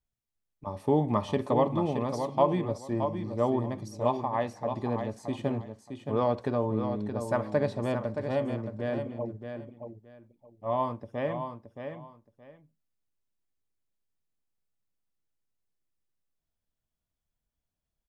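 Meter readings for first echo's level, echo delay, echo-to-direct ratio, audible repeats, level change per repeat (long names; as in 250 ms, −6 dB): −7.5 dB, 622 ms, −7.5 dB, 2, −13.5 dB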